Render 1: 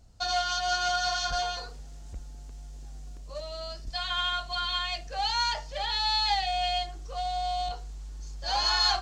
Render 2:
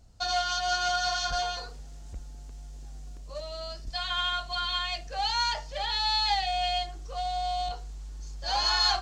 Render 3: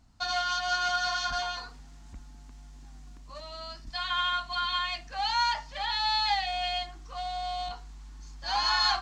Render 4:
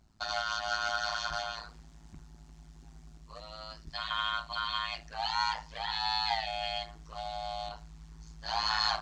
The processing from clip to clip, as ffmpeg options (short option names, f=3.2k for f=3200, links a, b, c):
-af anull
-af "equalizer=f=250:t=o:w=1:g=10,equalizer=f=500:t=o:w=1:g=-9,equalizer=f=1k:t=o:w=1:g=10,equalizer=f=2k:t=o:w=1:g=6,equalizer=f=4k:t=o:w=1:g=3,volume=-6dB"
-af "tremolo=f=110:d=1"